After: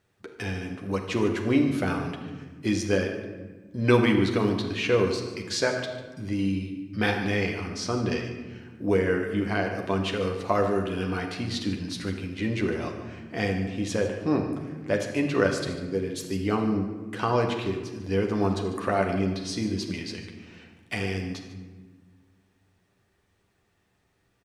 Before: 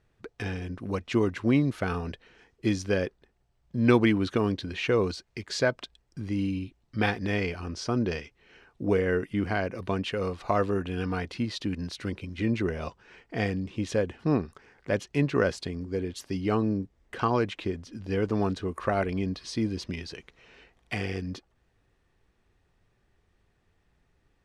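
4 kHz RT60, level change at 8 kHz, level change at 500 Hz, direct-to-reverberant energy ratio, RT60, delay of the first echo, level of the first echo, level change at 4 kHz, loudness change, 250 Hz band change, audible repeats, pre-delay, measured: 0.80 s, +5.5 dB, +2.5 dB, 1.5 dB, 1.3 s, 147 ms, −14.0 dB, +4.0 dB, +2.0 dB, +1.5 dB, 1, 10 ms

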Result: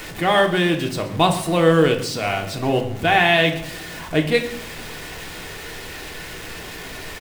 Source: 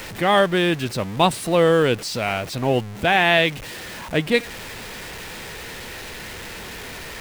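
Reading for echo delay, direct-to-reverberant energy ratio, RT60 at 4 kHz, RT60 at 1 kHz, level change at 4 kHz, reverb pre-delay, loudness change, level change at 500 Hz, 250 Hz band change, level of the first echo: 129 ms, 3.0 dB, 0.45 s, 0.65 s, +1.0 dB, 3 ms, +1.0 dB, +0.5 dB, +2.0 dB, −17.5 dB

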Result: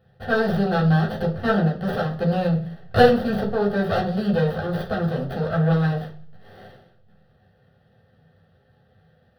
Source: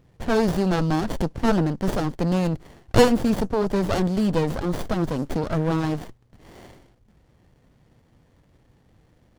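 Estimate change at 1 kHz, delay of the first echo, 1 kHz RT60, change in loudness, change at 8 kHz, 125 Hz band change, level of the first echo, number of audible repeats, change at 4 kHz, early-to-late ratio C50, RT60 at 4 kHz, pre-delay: +2.5 dB, no echo audible, 0.40 s, +1.5 dB, below −10 dB, +3.5 dB, no echo audible, no echo audible, −0.5 dB, 11.0 dB, 0.55 s, 3 ms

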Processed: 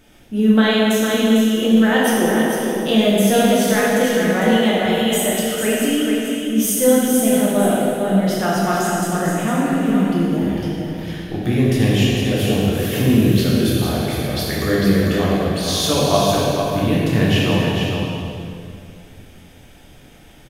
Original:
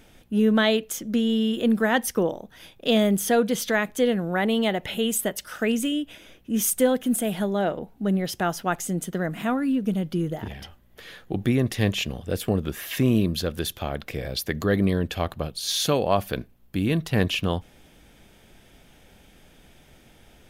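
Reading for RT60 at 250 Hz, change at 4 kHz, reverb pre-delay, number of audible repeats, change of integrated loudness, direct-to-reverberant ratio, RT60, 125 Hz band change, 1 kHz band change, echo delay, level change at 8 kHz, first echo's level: 3.0 s, +7.5 dB, 7 ms, 1, +7.5 dB, −7.5 dB, 2.4 s, +8.5 dB, +8.0 dB, 451 ms, +7.0 dB, −5.0 dB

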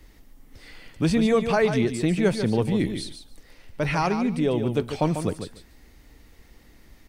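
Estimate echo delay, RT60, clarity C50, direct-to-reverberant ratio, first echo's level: 145 ms, no reverb audible, no reverb audible, no reverb audible, −8.5 dB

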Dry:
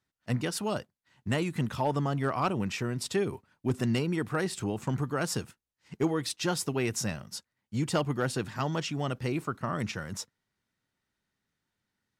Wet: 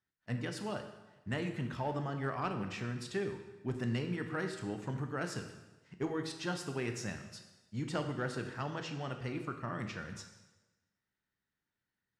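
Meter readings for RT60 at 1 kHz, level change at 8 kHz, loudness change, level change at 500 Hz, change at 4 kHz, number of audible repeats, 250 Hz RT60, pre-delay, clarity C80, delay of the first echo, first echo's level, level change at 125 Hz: 1.1 s, −12.5 dB, −7.0 dB, −7.0 dB, −8.5 dB, no echo audible, 1.1 s, 7 ms, 10.0 dB, no echo audible, no echo audible, −7.0 dB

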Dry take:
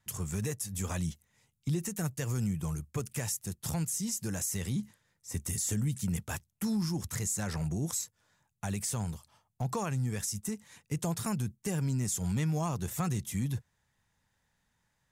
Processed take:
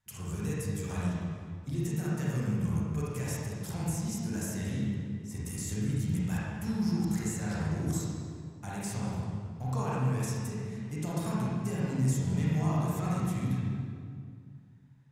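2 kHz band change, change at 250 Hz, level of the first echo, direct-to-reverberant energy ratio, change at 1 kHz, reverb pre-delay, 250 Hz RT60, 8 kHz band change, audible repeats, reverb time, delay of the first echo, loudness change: +1.0 dB, +3.0 dB, no echo audible, −8.0 dB, +2.0 dB, 30 ms, 2.5 s, −7.0 dB, no echo audible, 2.1 s, no echo audible, +1.0 dB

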